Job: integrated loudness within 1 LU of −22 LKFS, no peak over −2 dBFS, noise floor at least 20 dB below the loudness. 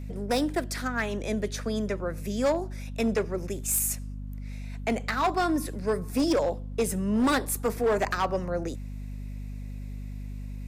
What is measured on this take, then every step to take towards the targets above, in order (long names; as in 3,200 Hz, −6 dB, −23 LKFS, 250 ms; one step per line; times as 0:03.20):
share of clipped samples 1.8%; peaks flattened at −19.5 dBFS; mains hum 50 Hz; hum harmonics up to 250 Hz; level of the hum −34 dBFS; integrated loudness −28.0 LKFS; sample peak −19.5 dBFS; target loudness −22.0 LKFS
→ clipped peaks rebuilt −19.5 dBFS
mains-hum notches 50/100/150/200/250 Hz
level +6 dB